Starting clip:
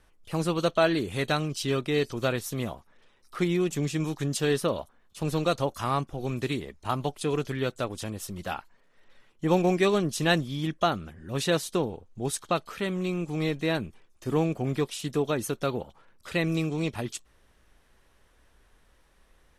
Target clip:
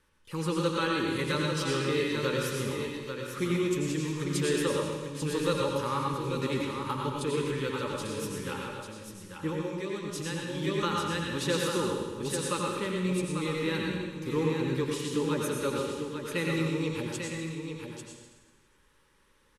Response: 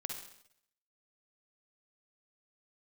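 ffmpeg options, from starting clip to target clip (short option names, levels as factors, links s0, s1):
-filter_complex "[0:a]asuperstop=centerf=700:order=20:qfactor=3.3,lowshelf=f=71:g=-9.5,aecho=1:1:843:0.447,asettb=1/sr,asplit=3[s0][s1][s2];[s0]atrim=end=9.494[s3];[s1]atrim=start=9.49:end=10.55,asetpts=PTS-STARTPTS,afade=t=in:d=0.004:c=qsin,afade=t=out:st=1.056:d=0.004:c=qsin,acompressor=threshold=0.0316:ratio=10[s4];[s2]atrim=start=10.546[s5];[s3][s4]acrossfade=d=0.004:c1=hsin:c2=qsin[s6];[s6][s5]acrossfade=d=0.004:c1=qsin:c2=hsin[s7];[1:a]atrim=start_sample=2205,asetrate=24255,aresample=44100[s8];[s7][s8]afir=irnorm=-1:irlink=0,volume=0.596"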